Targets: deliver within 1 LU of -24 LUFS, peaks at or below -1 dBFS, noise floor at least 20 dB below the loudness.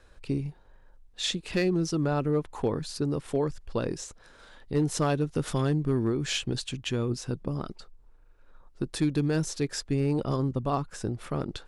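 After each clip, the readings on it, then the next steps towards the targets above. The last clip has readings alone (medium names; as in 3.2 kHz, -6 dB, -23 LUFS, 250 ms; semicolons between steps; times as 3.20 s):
clipped samples 0.3%; clipping level -18.0 dBFS; loudness -29.5 LUFS; peak level -18.0 dBFS; loudness target -24.0 LUFS
-> clip repair -18 dBFS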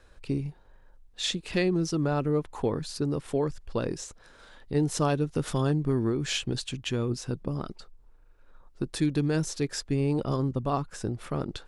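clipped samples 0.0%; loudness -29.5 LUFS; peak level -13.0 dBFS; loudness target -24.0 LUFS
-> trim +5.5 dB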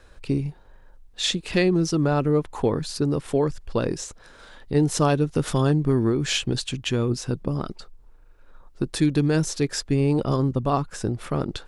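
loudness -24.0 LUFS; peak level -7.5 dBFS; noise floor -50 dBFS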